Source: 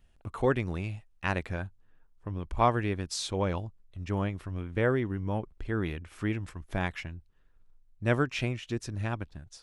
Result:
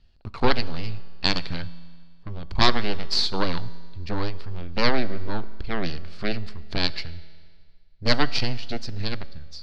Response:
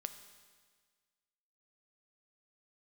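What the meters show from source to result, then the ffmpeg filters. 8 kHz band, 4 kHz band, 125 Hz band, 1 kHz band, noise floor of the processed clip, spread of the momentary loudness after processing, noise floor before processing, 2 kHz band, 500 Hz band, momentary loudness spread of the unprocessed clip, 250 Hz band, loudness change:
0.0 dB, +16.0 dB, 0.0 dB, +3.5 dB, −47 dBFS, 17 LU, −63 dBFS, +5.5 dB, +1.0 dB, 13 LU, +2.5 dB, +4.5 dB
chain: -filter_complex "[0:a]aeval=exprs='0.299*(cos(1*acos(clip(val(0)/0.299,-1,1)))-cos(1*PI/2))+0.133*(cos(6*acos(clip(val(0)/0.299,-1,1)))-cos(6*PI/2))':channel_layout=same,lowpass=frequency=4500:width_type=q:width=8.9,asplit=2[link_01][link_02];[1:a]atrim=start_sample=2205,asetrate=41454,aresample=44100,lowshelf=frequency=380:gain=11.5[link_03];[link_02][link_03]afir=irnorm=-1:irlink=0,volume=-2.5dB[link_04];[link_01][link_04]amix=inputs=2:normalize=0,volume=-5dB"

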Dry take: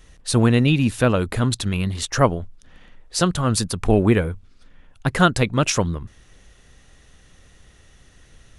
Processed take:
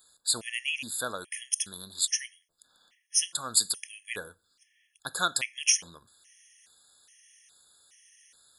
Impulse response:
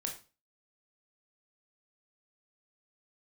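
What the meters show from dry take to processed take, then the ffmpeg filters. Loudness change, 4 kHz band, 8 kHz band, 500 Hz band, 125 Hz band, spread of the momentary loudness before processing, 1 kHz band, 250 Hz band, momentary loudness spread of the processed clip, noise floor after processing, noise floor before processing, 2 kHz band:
−8.5 dB, −2.5 dB, +2.0 dB, −22.5 dB, −34.0 dB, 11 LU, −14.0 dB, −29.5 dB, 13 LU, −74 dBFS, −52 dBFS, −7.5 dB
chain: -filter_complex "[0:a]aderivative,asplit=2[link_01][link_02];[1:a]atrim=start_sample=2205[link_03];[link_02][link_03]afir=irnorm=-1:irlink=0,volume=-14dB[link_04];[link_01][link_04]amix=inputs=2:normalize=0,afftfilt=real='re*gt(sin(2*PI*1.2*pts/sr)*(1-2*mod(floor(b*sr/1024/1700),2)),0)':imag='im*gt(sin(2*PI*1.2*pts/sr)*(1-2*mod(floor(b*sr/1024/1700),2)),0)':win_size=1024:overlap=0.75,volume=3.5dB"

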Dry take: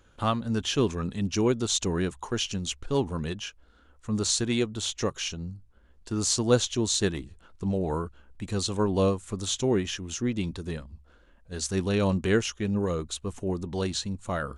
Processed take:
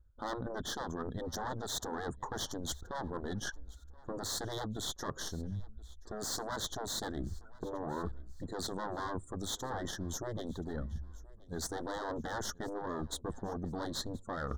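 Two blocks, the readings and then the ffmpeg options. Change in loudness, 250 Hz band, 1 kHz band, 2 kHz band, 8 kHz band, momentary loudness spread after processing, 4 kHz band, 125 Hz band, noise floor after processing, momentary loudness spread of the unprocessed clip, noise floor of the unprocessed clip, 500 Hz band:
−11.5 dB, −13.0 dB, −4.5 dB, −7.5 dB, −10.5 dB, 7 LU, −10.0 dB, −12.5 dB, −55 dBFS, 10 LU, −58 dBFS, −12.0 dB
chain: -filter_complex "[0:a]afftdn=noise_reduction=27:noise_floor=-45,aeval=exprs='(tanh(22.4*val(0)+0.7)-tanh(0.7))/22.4':channel_layout=same,adynamicequalizer=threshold=0.00631:dfrequency=6100:dqfactor=1.4:tfrequency=6100:tqfactor=1.4:attack=5:release=100:ratio=0.375:range=1.5:mode=cutabove:tftype=bell,asplit=2[link_01][link_02];[link_02]adynamicsmooth=sensitivity=6:basefreq=1900,volume=-1.5dB[link_03];[link_01][link_03]amix=inputs=2:normalize=0,afftfilt=real='re*lt(hypot(re,im),0.2)':imag='im*lt(hypot(re,im),0.2)':win_size=1024:overlap=0.75,asuperstop=centerf=2500:order=8:qfactor=1.7,areverse,acompressor=threshold=-50dB:ratio=6,areverse,aecho=1:1:1027|2054:0.0708|0.0255,volume=13dB"

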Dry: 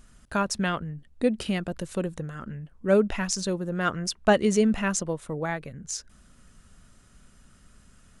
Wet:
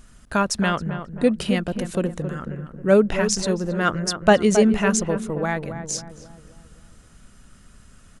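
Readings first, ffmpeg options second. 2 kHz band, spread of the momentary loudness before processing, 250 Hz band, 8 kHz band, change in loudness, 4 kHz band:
+5.0 dB, 13 LU, +5.5 dB, +5.0 dB, +5.5 dB, +5.0 dB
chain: -filter_complex "[0:a]asplit=2[link_01][link_02];[link_02]adelay=270,lowpass=frequency=1200:poles=1,volume=-8.5dB,asplit=2[link_03][link_04];[link_04]adelay=270,lowpass=frequency=1200:poles=1,volume=0.5,asplit=2[link_05][link_06];[link_06]adelay=270,lowpass=frequency=1200:poles=1,volume=0.5,asplit=2[link_07][link_08];[link_08]adelay=270,lowpass=frequency=1200:poles=1,volume=0.5,asplit=2[link_09][link_10];[link_10]adelay=270,lowpass=frequency=1200:poles=1,volume=0.5,asplit=2[link_11][link_12];[link_12]adelay=270,lowpass=frequency=1200:poles=1,volume=0.5[link_13];[link_01][link_03][link_05][link_07][link_09][link_11][link_13]amix=inputs=7:normalize=0,volume=5dB"

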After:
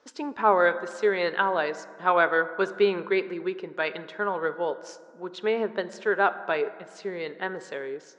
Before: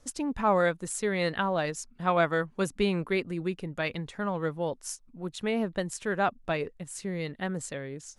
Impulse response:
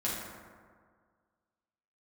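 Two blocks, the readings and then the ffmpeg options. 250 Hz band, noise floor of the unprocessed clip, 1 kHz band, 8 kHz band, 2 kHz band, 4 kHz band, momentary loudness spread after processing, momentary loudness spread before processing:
−3.0 dB, −57 dBFS, +5.0 dB, below −10 dB, +6.5 dB, +1.0 dB, 13 LU, 10 LU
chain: -filter_complex "[0:a]highpass=360,equalizer=frequency=410:width_type=q:width=4:gain=9,equalizer=frequency=940:width_type=q:width=4:gain=6,equalizer=frequency=1500:width_type=q:width=4:gain=7,lowpass=frequency=5100:width=0.5412,lowpass=frequency=5100:width=1.3066,asplit=2[link_01][link_02];[1:a]atrim=start_sample=2205[link_03];[link_02][link_03]afir=irnorm=-1:irlink=0,volume=-17dB[link_04];[link_01][link_04]amix=inputs=2:normalize=0"

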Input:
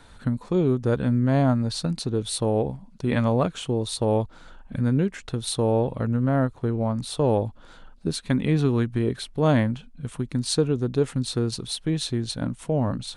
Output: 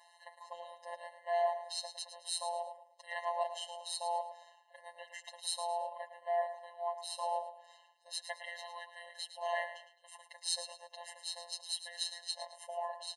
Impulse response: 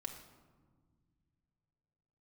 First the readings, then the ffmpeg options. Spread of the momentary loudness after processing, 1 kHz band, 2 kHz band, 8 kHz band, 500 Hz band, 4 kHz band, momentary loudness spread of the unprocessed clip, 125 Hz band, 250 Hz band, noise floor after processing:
15 LU, −4.5 dB, −8.5 dB, −8.0 dB, −15.0 dB, −7.0 dB, 8 LU, below −40 dB, below −40 dB, −65 dBFS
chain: -af "aecho=1:1:109|218|327:0.282|0.0874|0.0271,afftfilt=real='hypot(re,im)*cos(PI*b)':imag='0':win_size=1024:overlap=0.75,afftfilt=real='re*eq(mod(floor(b*sr/1024/540),2),1)':imag='im*eq(mod(floor(b*sr/1024/540),2),1)':win_size=1024:overlap=0.75,volume=-1.5dB"

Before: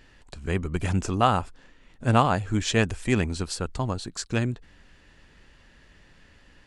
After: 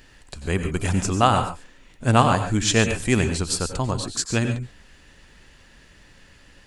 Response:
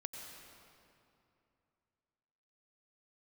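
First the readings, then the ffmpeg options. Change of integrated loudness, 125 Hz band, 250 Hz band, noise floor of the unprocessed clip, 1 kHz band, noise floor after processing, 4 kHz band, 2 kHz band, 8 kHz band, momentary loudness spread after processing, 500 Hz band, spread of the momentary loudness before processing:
+4.0 dB, +3.5 dB, +3.5 dB, −56 dBFS, +3.5 dB, −52 dBFS, +6.0 dB, +4.5 dB, +9.5 dB, 11 LU, +3.5 dB, 9 LU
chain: -filter_complex "[0:a]highshelf=frequency=6000:gain=10[link_01];[1:a]atrim=start_sample=2205,atrim=end_sample=6615[link_02];[link_01][link_02]afir=irnorm=-1:irlink=0,volume=7dB"

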